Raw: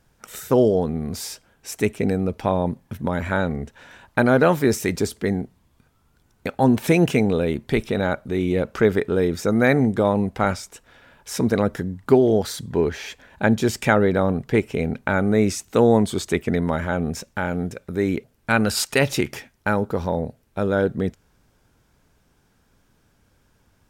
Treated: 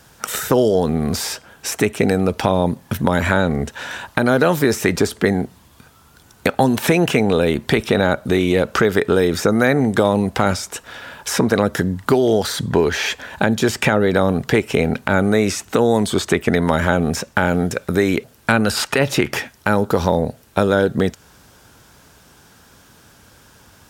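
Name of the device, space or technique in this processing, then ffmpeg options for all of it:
mastering chain: -filter_complex "[0:a]highpass=54,equalizer=f=2.2k:t=o:w=0.48:g=-4,acrossover=split=540|2700[a][b][c];[a]acompressor=threshold=-23dB:ratio=4[d];[b]acompressor=threshold=-31dB:ratio=4[e];[c]acompressor=threshold=-45dB:ratio=4[f];[d][e][f]amix=inputs=3:normalize=0,acompressor=threshold=-31dB:ratio=1.5,tiltshelf=f=690:g=-4,alimiter=level_in=16dB:limit=-1dB:release=50:level=0:latency=1,volume=-1dB"

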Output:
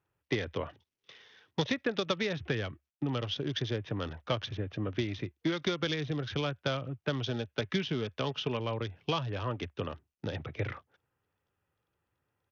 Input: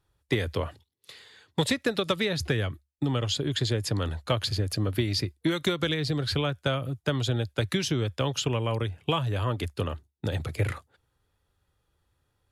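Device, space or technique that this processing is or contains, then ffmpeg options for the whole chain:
Bluetooth headset: -filter_complex "[0:a]asettb=1/sr,asplit=3[a][b][c];[a]atrim=end=7.264[d];[b]atrim=start=7.26:end=8.6,asetpts=PTS-STARTPTS,afade=t=in:d=0.004:c=qsin,afade=t=out:st=1.336:d=0.004:c=qsin,aecho=1:1:4.7:0.34,atrim=end_sample=59094[e];[c]atrim=start=8.596[f];[d][e]acrossfade=d=0.004:c1=hsin:c2=qsin[g];[g][f]acrossfade=d=0.004:c1=qsin:c2=hsin,highpass=120,aresample=8000,aresample=44100,volume=-4.5dB" -ar 48000 -c:a sbc -b:a 64k

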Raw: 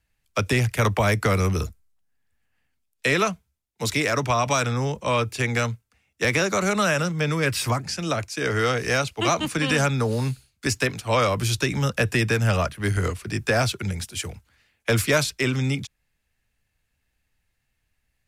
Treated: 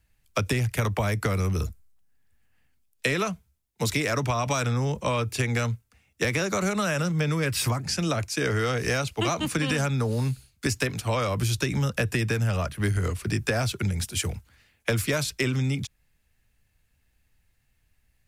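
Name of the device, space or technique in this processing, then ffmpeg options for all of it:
ASMR close-microphone chain: -af "lowshelf=f=240:g=5.5,acompressor=threshold=-24dB:ratio=6,highshelf=f=10k:g=5.5,volume=1.5dB"

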